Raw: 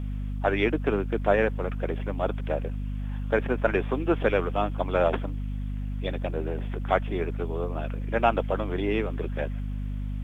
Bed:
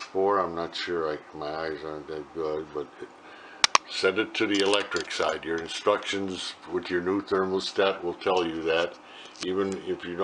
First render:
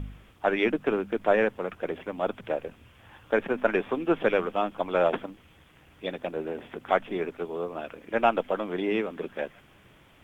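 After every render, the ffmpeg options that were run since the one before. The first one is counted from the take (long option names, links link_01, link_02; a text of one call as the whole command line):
ffmpeg -i in.wav -af "bandreject=frequency=50:width_type=h:width=4,bandreject=frequency=100:width_type=h:width=4,bandreject=frequency=150:width_type=h:width=4,bandreject=frequency=200:width_type=h:width=4,bandreject=frequency=250:width_type=h:width=4" out.wav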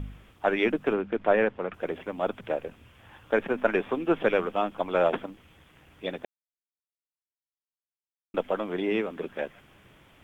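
ffmpeg -i in.wav -filter_complex "[0:a]asettb=1/sr,asplit=3[link_01][link_02][link_03];[link_01]atrim=end=0.934[link_04];[link_02]atrim=start=0.93:end=1.74,asetpts=PTS-STARTPTS,afade=type=in:duration=0.004:curve=qsin,afade=type=out:start_time=0.806:duration=0.004:curve=qsin,lowpass=3500[link_05];[link_03]atrim=start=1.736[link_06];[link_04][link_05]acrossfade=duration=0.004:curve1=hsin:curve2=qsin[link_07];[link_07][link_06]acrossfade=duration=0.004:curve1=qsin:curve2=hsin,asplit=3[link_08][link_09][link_10];[link_08]atrim=end=6.25,asetpts=PTS-STARTPTS,afade=type=out:start_time=6.246:duration=0.004:curve=hsin[link_11];[link_09]atrim=start=6.25:end=8.34,asetpts=PTS-STARTPTS,volume=0[link_12];[link_10]atrim=start=8.34,asetpts=PTS-STARTPTS,afade=type=in:duration=0.004:curve=hsin[link_13];[link_11][link_12][link_13]concat=n=3:v=0:a=1" out.wav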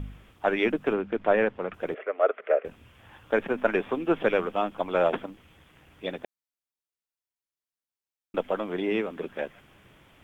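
ffmpeg -i in.wav -filter_complex "[0:a]asettb=1/sr,asplit=3[link_01][link_02][link_03];[link_01]atrim=end=1.944[link_04];[link_02]atrim=start=1.94:end=2.65,asetpts=PTS-STARTPTS,afade=type=in:duration=0.004:curve=qsin,afade=type=out:start_time=0.706:duration=0.004:curve=qsin,highpass=frequency=420:width=0.5412,highpass=frequency=420:width=1.3066,equalizer=frequency=430:width_type=q:width=4:gain=9,equalizer=frequency=620:width_type=q:width=4:gain=8,equalizer=frequency=910:width_type=q:width=4:gain=-9,equalizer=frequency=1300:width_type=q:width=4:gain=9,equalizer=frequency=2000:width_type=q:width=4:gain=6,lowpass=frequency=2600:width=0.5412,lowpass=frequency=2600:width=1.3066[link_05];[link_03]atrim=start=2.646[link_06];[link_04][link_05]acrossfade=duration=0.004:curve1=hsin:curve2=qsin[link_07];[link_07][link_06]acrossfade=duration=0.004:curve1=qsin:curve2=hsin" out.wav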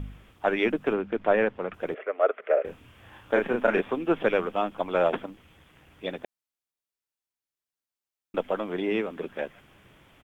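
ffmpeg -i in.wav -filter_complex "[0:a]asplit=3[link_01][link_02][link_03];[link_01]afade=type=out:start_time=2.56:duration=0.02[link_04];[link_02]asplit=2[link_05][link_06];[link_06]adelay=33,volume=-3dB[link_07];[link_05][link_07]amix=inputs=2:normalize=0,afade=type=in:start_time=2.56:duration=0.02,afade=type=out:start_time=3.8:duration=0.02[link_08];[link_03]afade=type=in:start_time=3.8:duration=0.02[link_09];[link_04][link_08][link_09]amix=inputs=3:normalize=0" out.wav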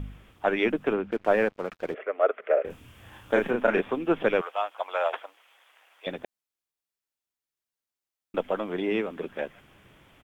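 ffmpeg -i in.wav -filter_complex "[0:a]asettb=1/sr,asplit=3[link_01][link_02][link_03];[link_01]atrim=end=1.114[link_04];[link_02]atrim=start=1.11:end=1.94,asetpts=PTS-STARTPTS,afade=type=in:duration=0.004:curve=qsin,afade=type=out:start_time=0.826:duration=0.004:curve=qsin,aeval=exprs='sgn(val(0))*max(abs(val(0))-0.00398,0)':channel_layout=same[link_05];[link_03]atrim=start=1.936[link_06];[link_04][link_05]acrossfade=duration=0.004:curve1=hsin:curve2=qsin[link_07];[link_07][link_06]acrossfade=duration=0.004:curve1=qsin:curve2=hsin,asettb=1/sr,asplit=3[link_08][link_09][link_10];[link_08]atrim=end=2.704[link_11];[link_09]atrim=start=2.7:end=3.51,asetpts=PTS-STARTPTS,afade=type=in:duration=0.004:curve=qsin,afade=type=out:start_time=0.806:duration=0.004:curve=qsin,bass=frequency=250:gain=3,treble=frequency=4000:gain=7[link_12];[link_10]atrim=start=3.506[link_13];[link_11][link_12]acrossfade=duration=0.004:curve1=hsin:curve2=qsin[link_14];[link_14][link_13]acrossfade=duration=0.004:curve1=qsin:curve2=hsin,asettb=1/sr,asplit=3[link_15][link_16][link_17];[link_15]atrim=end=4.414[link_18];[link_16]atrim=start=4.41:end=6.07,asetpts=PTS-STARTPTS,afade=type=in:duration=0.004:curve=qsin,afade=type=out:start_time=1.656:duration=0.004:curve=qsin,highpass=frequency=620:width=0.5412,highpass=frequency=620:width=1.3066[link_19];[link_17]atrim=start=6.066[link_20];[link_18][link_19]acrossfade=duration=0.004:curve1=hsin:curve2=qsin[link_21];[link_21][link_20]acrossfade=duration=0.004:curve1=qsin:curve2=hsin" out.wav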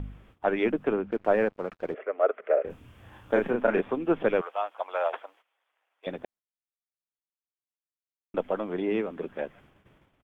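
ffmpeg -i in.wav -af "agate=range=-14dB:threshold=-55dB:ratio=16:detection=peak,highshelf=frequency=2200:gain=-10" out.wav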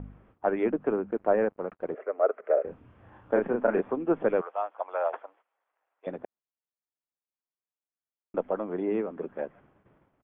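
ffmpeg -i in.wav -af "lowpass=1400,lowshelf=frequency=93:gain=-9" out.wav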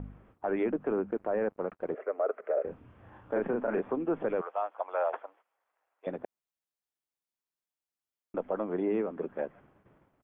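ffmpeg -i in.wav -af "alimiter=limit=-21dB:level=0:latency=1:release=26" out.wav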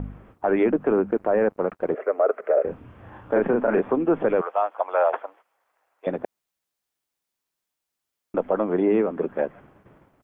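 ffmpeg -i in.wav -af "volume=9.5dB" out.wav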